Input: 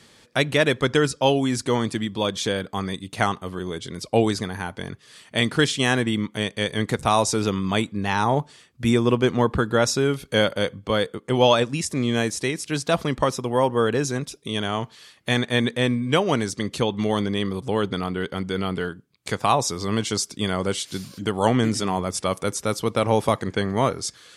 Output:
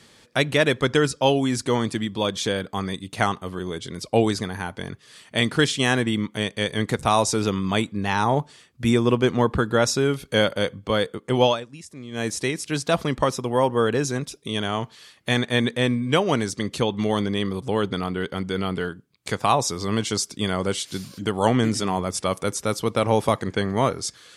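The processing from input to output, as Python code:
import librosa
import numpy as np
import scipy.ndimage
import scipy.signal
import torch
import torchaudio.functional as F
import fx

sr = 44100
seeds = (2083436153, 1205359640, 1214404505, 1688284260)

y = fx.edit(x, sr, fx.fade_down_up(start_s=11.42, length_s=0.88, db=-15.0, fade_s=0.19), tone=tone)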